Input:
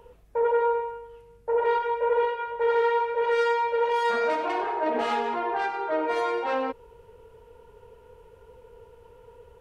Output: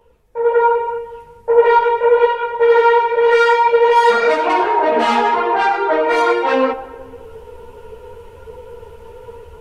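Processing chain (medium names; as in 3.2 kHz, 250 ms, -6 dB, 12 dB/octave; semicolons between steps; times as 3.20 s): de-hum 46.2 Hz, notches 39; level rider gain up to 16 dB; filtered feedback delay 210 ms, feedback 48%, low-pass 2.2 kHz, level -17 dB; three-phase chorus; trim +2 dB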